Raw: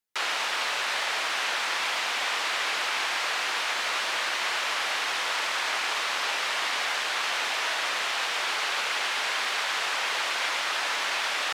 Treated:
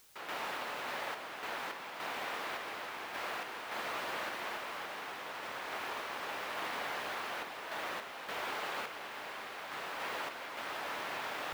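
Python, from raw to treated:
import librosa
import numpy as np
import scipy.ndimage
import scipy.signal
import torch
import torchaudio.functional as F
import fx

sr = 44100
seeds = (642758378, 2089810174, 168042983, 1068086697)

p1 = fx.tilt_eq(x, sr, slope=-4.5)
p2 = p1 + fx.echo_single(p1, sr, ms=273, db=-9.0, dry=0)
p3 = fx.quant_dither(p2, sr, seeds[0], bits=8, dither='triangular')
p4 = fx.tremolo_random(p3, sr, seeds[1], hz=3.5, depth_pct=55)
y = F.gain(torch.from_numpy(p4), -7.5).numpy()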